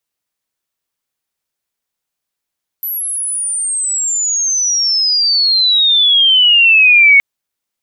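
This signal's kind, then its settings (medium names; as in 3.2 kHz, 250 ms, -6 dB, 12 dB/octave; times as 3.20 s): sweep logarithmic 12 kHz -> 2.2 kHz -17.5 dBFS -> -3.5 dBFS 4.37 s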